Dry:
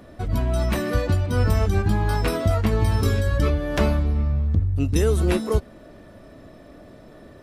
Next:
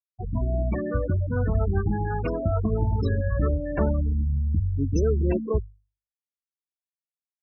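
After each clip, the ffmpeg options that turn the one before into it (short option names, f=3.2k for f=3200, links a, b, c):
-af "afftfilt=real='re*gte(hypot(re,im),0.126)':imag='im*gte(hypot(re,im),0.126)':win_size=1024:overlap=0.75,bandreject=f=50:t=h:w=6,bandreject=f=100:t=h:w=6,volume=-2.5dB"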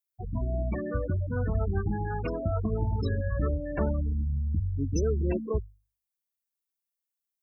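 -af "aemphasis=mode=production:type=50kf,volume=-4.5dB"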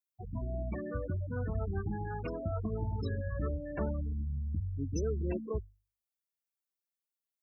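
-af "highpass=47,volume=-6dB"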